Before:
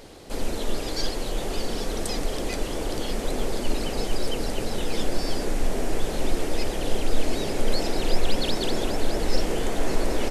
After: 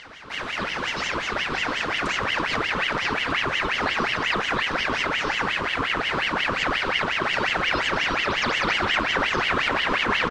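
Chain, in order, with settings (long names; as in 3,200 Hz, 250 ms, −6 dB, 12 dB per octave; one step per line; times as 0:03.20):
in parallel at −1 dB: brickwall limiter −15.5 dBFS, peak gain reduction 8 dB
on the sum: pitch-shifted copies added −4 semitones −1 dB
band-pass filter 250–2,800 Hz
on a send: feedback echo with a low-pass in the loop 261 ms, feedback 80%, low-pass 1,900 Hz, level −3 dB
on the sum: ring modulator whose carrier an LFO sweeps 1,600 Hz, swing 60%, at 5.6 Hz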